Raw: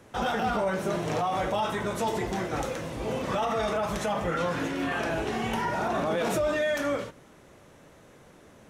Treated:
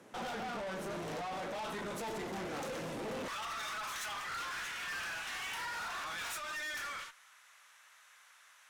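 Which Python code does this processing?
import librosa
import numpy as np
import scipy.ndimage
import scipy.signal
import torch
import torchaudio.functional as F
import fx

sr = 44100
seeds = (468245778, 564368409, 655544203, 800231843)

y = fx.highpass(x, sr, hz=fx.steps((0.0, 150.0), (3.28, 1200.0)), slope=24)
y = fx.rider(y, sr, range_db=10, speed_s=0.5)
y = fx.tube_stage(y, sr, drive_db=38.0, bias=0.4)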